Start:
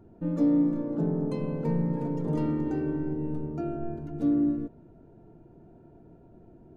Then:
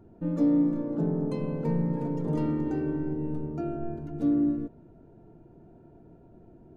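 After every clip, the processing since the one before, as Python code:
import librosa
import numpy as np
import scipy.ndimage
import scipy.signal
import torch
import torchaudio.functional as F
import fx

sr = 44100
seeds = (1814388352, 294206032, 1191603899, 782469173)

y = x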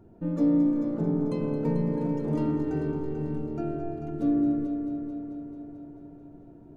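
y = fx.echo_heads(x, sr, ms=220, heads='first and second', feedback_pct=61, wet_db=-11.0)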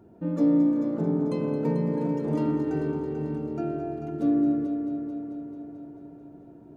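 y = fx.highpass(x, sr, hz=150.0, slope=6)
y = F.gain(torch.from_numpy(y), 2.5).numpy()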